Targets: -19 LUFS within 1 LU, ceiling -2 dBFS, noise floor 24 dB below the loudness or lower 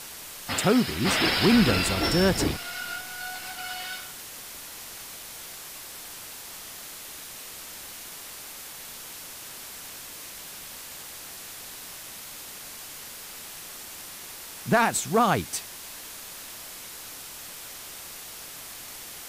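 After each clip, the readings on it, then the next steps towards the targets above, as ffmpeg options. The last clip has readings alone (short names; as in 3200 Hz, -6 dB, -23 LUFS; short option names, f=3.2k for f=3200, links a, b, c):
noise floor -42 dBFS; noise floor target -54 dBFS; loudness -29.5 LUFS; peak -10.0 dBFS; loudness target -19.0 LUFS
-> -af "afftdn=nr=12:nf=-42"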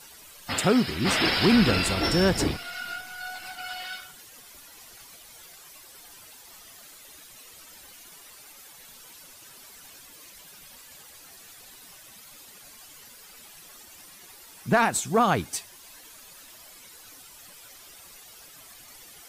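noise floor -49 dBFS; loudness -24.5 LUFS; peak -10.5 dBFS; loudness target -19.0 LUFS
-> -af "volume=5.5dB"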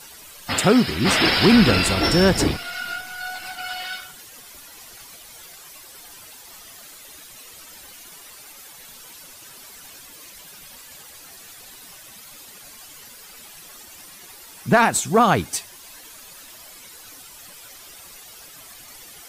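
loudness -19.0 LUFS; peak -5.0 dBFS; noise floor -44 dBFS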